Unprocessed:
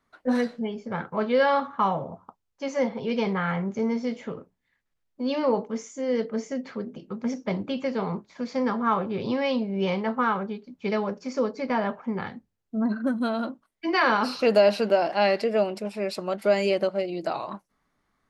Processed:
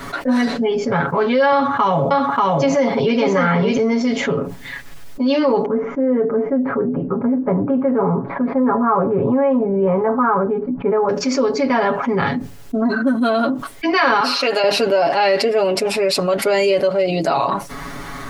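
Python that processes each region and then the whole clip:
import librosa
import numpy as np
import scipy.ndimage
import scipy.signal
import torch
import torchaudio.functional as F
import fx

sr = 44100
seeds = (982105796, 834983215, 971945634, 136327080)

y = fx.chain(x, sr, fx.highpass(hz=61.0, slope=12),
    fx.echo_single(ms=586, db=-3.5),
    fx.band_squash(depth_pct=100), at=(1.52, 3.77))
y = fx.chain(y, sr, fx.lowpass(hz=1400.0, slope=24),
    fx.doubler(ms=16.0, db=-13), at=(5.65, 11.09))
y = fx.chain(y, sr, fx.highpass(hz=1200.0, slope=6),
    fx.high_shelf(hz=5200.0, db=-8.0), at=(14.2, 14.64))
y = y + 0.94 * np.pad(y, (int(7.2 * sr / 1000.0), 0))[:len(y)]
y = fx.env_flatten(y, sr, amount_pct=70)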